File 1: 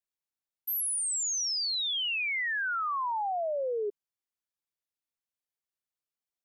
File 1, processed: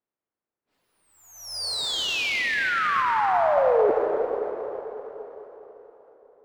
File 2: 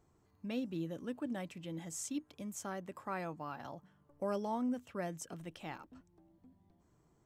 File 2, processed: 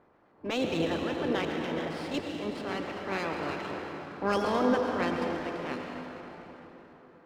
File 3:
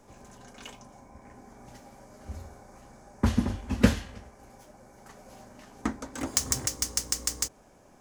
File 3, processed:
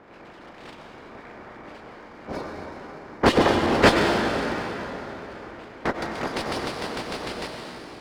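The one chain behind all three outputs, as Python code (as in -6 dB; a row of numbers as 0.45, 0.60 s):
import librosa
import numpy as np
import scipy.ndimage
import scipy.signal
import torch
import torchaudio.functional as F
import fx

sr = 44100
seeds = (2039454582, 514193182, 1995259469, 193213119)

y = fx.spec_clip(x, sr, under_db=24)
y = fx.env_lowpass(y, sr, base_hz=1900.0, full_db=-32.0)
y = fx.dereverb_blind(y, sr, rt60_s=0.65)
y = scipy.signal.sosfilt(scipy.signal.cheby1(4, 1.0, 5000.0, 'lowpass', fs=sr, output='sos'), y)
y = fx.peak_eq(y, sr, hz=350.0, db=11.0, octaves=2.9)
y = fx.transient(y, sr, attack_db=-9, sustain_db=3)
y = fx.rev_plate(y, sr, seeds[0], rt60_s=4.1, hf_ratio=0.7, predelay_ms=80, drr_db=1.0)
y = fx.running_max(y, sr, window=3)
y = F.gain(torch.from_numpy(y), 4.5).numpy()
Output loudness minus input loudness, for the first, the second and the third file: +6.0, +10.0, +4.5 LU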